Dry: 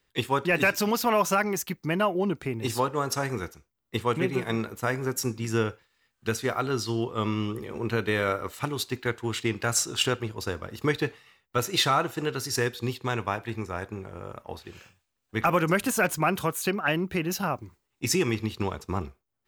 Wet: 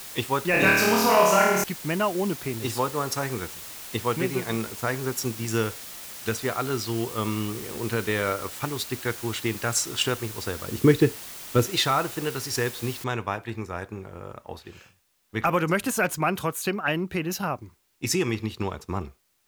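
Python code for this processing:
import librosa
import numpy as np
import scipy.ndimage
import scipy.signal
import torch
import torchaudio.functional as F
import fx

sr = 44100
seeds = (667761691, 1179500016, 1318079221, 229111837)

y = fx.room_flutter(x, sr, wall_m=4.6, rt60_s=1.1, at=(0.51, 1.64))
y = fx.high_shelf(y, sr, hz=4800.0, db=8.5, at=(5.48, 6.29))
y = fx.low_shelf_res(y, sr, hz=520.0, db=8.5, q=1.5, at=(10.68, 11.67))
y = fx.noise_floor_step(y, sr, seeds[0], at_s=13.04, before_db=-40, after_db=-70, tilt_db=0.0)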